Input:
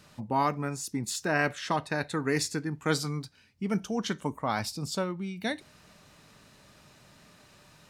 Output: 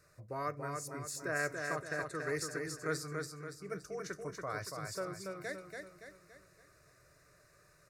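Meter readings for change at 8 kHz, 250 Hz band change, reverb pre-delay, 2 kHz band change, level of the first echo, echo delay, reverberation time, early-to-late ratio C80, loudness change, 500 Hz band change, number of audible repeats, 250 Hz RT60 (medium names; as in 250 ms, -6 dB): -7.0 dB, -14.0 dB, no reverb, -5.5 dB, -4.5 dB, 284 ms, no reverb, no reverb, -9.0 dB, -6.0 dB, 5, no reverb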